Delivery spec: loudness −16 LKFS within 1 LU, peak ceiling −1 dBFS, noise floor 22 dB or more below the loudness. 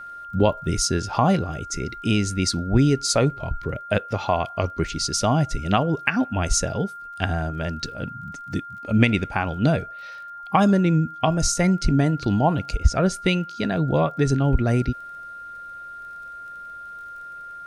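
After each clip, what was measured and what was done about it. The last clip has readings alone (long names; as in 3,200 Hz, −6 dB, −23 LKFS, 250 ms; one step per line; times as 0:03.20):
crackle rate 28 per second; interfering tone 1,400 Hz; level of the tone −35 dBFS; integrated loudness −22.5 LKFS; sample peak −3.5 dBFS; target loudness −16.0 LKFS
→ click removal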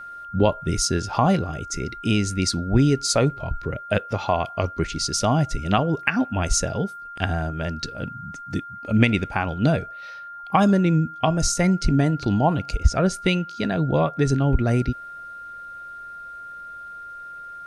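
crackle rate 0 per second; interfering tone 1,400 Hz; level of the tone −35 dBFS
→ notch filter 1,400 Hz, Q 30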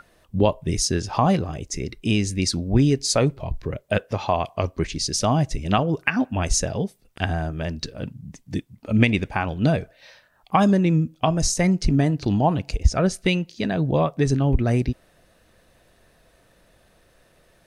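interfering tone none found; integrated loudness −23.0 LKFS; sample peak −3.5 dBFS; target loudness −16.0 LKFS
→ level +7 dB
brickwall limiter −1 dBFS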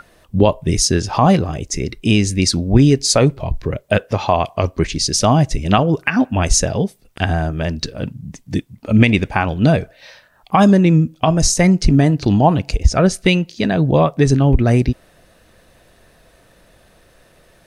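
integrated loudness −16.0 LKFS; sample peak −1.0 dBFS; background noise floor −52 dBFS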